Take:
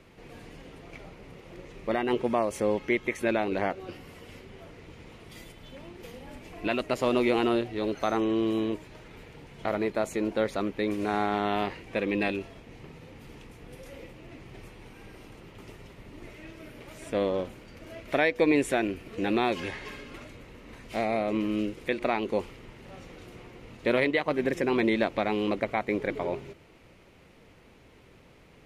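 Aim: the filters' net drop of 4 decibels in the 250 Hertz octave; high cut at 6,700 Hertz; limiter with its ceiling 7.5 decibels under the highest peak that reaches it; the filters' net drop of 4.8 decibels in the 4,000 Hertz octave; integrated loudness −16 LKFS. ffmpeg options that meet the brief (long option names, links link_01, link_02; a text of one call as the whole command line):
ffmpeg -i in.wav -af "lowpass=6700,equalizer=frequency=250:width_type=o:gain=-5.5,equalizer=frequency=4000:width_type=o:gain=-6,volume=17.5dB,alimiter=limit=-3dB:level=0:latency=1" out.wav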